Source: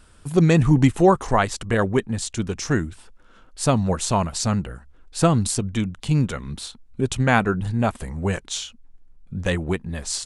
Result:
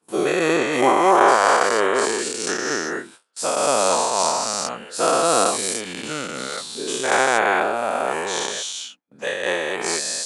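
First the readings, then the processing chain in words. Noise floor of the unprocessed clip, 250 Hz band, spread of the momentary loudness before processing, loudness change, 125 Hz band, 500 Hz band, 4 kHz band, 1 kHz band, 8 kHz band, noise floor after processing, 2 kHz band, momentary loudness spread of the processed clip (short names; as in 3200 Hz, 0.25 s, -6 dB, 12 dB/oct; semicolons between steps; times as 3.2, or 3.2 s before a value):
-51 dBFS, -6.0 dB, 13 LU, +2.0 dB, -20.0 dB, +4.5 dB, +6.5 dB, +7.5 dB, +6.5 dB, -48 dBFS, +6.5 dB, 12 LU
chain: spectral dilation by 0.48 s; gate with hold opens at -20 dBFS; Chebyshev high-pass 510 Hz, order 2; reverse; upward compressor, threshold -34 dBFS; reverse; noise-modulated level, depth 55%; gain -1.5 dB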